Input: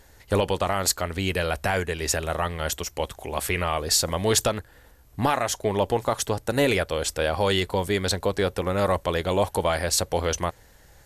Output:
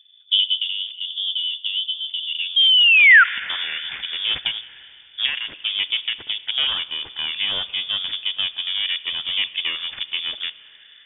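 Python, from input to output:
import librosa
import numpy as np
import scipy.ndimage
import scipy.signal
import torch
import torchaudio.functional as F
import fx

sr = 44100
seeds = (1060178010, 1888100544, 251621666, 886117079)

y = fx.dynamic_eq(x, sr, hz=1600.0, q=1.4, threshold_db=-41.0, ratio=4.0, max_db=-5)
y = fx.env_phaser(y, sr, low_hz=590.0, high_hz=1600.0, full_db=-23.0)
y = fx.cheby_harmonics(y, sr, harmonics=(4,), levels_db=(-12,), full_scale_db=-9.0)
y = fx.spec_paint(y, sr, seeds[0], shape='rise', start_s=2.56, length_s=0.68, low_hz=270.0, high_hz=2200.0, level_db=-15.0)
y = fx.filter_sweep_lowpass(y, sr, from_hz=510.0, to_hz=1800.0, start_s=2.16, end_s=3.0, q=2.2)
y = fx.rev_schroeder(y, sr, rt60_s=3.1, comb_ms=30, drr_db=16.0)
y = fx.freq_invert(y, sr, carrier_hz=3500)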